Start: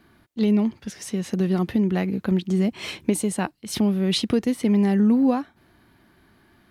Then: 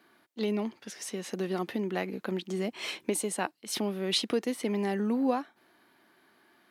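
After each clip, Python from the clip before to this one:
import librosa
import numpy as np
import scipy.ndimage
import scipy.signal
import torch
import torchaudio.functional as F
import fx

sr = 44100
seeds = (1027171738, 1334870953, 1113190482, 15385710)

y = scipy.signal.sosfilt(scipy.signal.butter(2, 360.0, 'highpass', fs=sr, output='sos'), x)
y = y * 10.0 ** (-3.0 / 20.0)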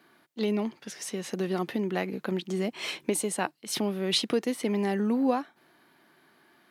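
y = fx.peak_eq(x, sr, hz=150.0, db=9.0, octaves=0.24)
y = y * 10.0 ** (2.0 / 20.0)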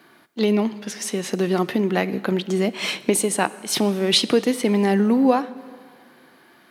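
y = fx.rev_plate(x, sr, seeds[0], rt60_s=2.0, hf_ratio=0.85, predelay_ms=0, drr_db=16.0)
y = y * 10.0 ** (8.5 / 20.0)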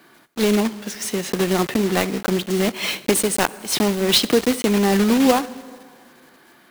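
y = fx.block_float(x, sr, bits=3)
y = y * 10.0 ** (1.0 / 20.0)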